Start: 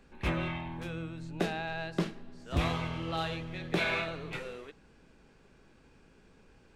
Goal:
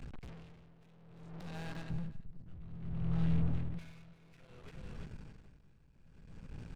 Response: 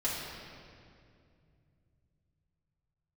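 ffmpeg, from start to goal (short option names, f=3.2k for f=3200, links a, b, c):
-filter_complex "[0:a]acompressor=threshold=-44dB:ratio=6,lowshelf=f=210:t=q:w=1.5:g=12.5,aeval=exprs='(tanh(398*val(0)+0.6)-tanh(0.6))/398':c=same,asettb=1/sr,asplit=3[a][b][c];[a]atrim=end=1.904[d];[b]atrim=start=1.9:end=3.79,asetpts=PTS-STARTPTS,afade=t=in:d=0.004:c=qsin,afade=t=out:st=1.886:d=0.004:c=qsin,bass=f=250:g=15,treble=f=4k:g=-12[e];[c]atrim=start=3.786[f];[d][e]acrossfade=d=0.004:c1=hsin:c2=qsin[g];[g][f]acrossfade=d=0.004:c1=qsin:c2=hsin,aecho=1:1:346:0.376,aeval=exprs='val(0)*pow(10,-20*(0.5-0.5*cos(2*PI*0.6*n/s))/20)':c=same,volume=9.5dB"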